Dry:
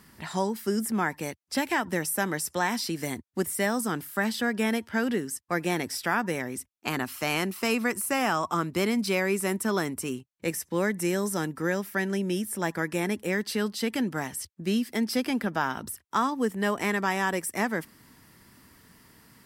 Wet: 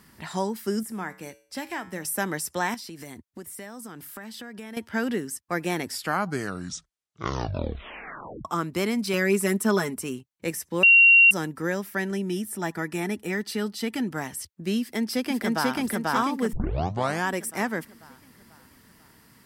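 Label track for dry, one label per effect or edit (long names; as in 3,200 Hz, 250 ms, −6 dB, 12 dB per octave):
0.830000	2.050000	tuned comb filter 63 Hz, decay 0.48 s, harmonics odd
2.740000	4.770000	downward compressor 5 to 1, threshold −37 dBFS
5.850000	5.850000	tape stop 2.60 s
9.130000	9.970000	comb filter 4.8 ms, depth 87%
10.830000	11.310000	beep over 2,750 Hz −11 dBFS
12.110000	14.110000	notch comb filter 540 Hz
14.810000	15.740000	delay throw 490 ms, feedback 50%, level 0 dB
16.530000	16.530000	tape start 0.74 s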